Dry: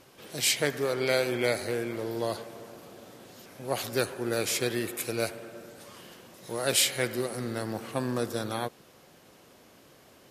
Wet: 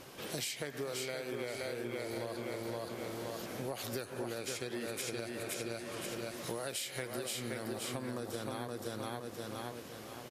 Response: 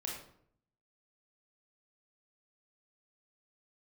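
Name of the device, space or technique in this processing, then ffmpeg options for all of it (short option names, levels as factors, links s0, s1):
serial compression, leveller first: -filter_complex "[0:a]asettb=1/sr,asplit=3[s0][s1][s2];[s0]atrim=end=4.194[s3];[s1]atrim=start=4.19:end=6.08,asetpts=PTS-STARTPTS,afade=t=in:d=0.004:c=qsin,afade=t=out:st=1.886:d=0.004:c=qsin,lowpass=11000[s4];[s2]atrim=start=6.076[s5];[s3][s4]acrossfade=d=0.004:c1=hsin:c2=qsin[s6];[s6][s5]acrossfade=d=0.004:c1=qsin:c2=hsin,aecho=1:1:521|1042|1563|2084:0.596|0.208|0.073|0.0255,acompressor=threshold=0.0282:ratio=3,acompressor=threshold=0.00891:ratio=6,volume=1.68"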